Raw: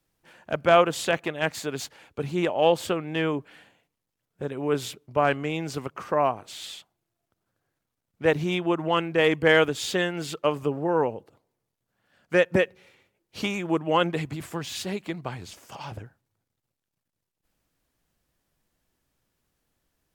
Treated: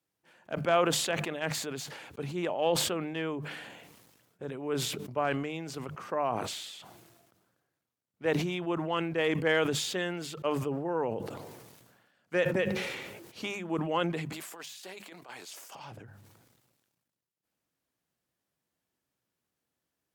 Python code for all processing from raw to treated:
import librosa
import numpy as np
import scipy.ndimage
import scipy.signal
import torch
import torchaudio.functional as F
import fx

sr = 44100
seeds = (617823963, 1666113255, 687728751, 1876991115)

y = fx.chain(x, sr, fx.highpass(hz=490.0, slope=12),
    fx.high_shelf(hz=5600.0, db=7.0),
    fx.over_compress(threshold_db=-37.0, ratio=-0.5), at=(14.32, 15.75))
y = scipy.signal.sosfilt(scipy.signal.butter(2, 110.0, 'highpass', fs=sr, output='sos'), y)
y = fx.hum_notches(y, sr, base_hz=50, count=4)
y = fx.sustainer(y, sr, db_per_s=37.0)
y = y * librosa.db_to_amplitude(-8.0)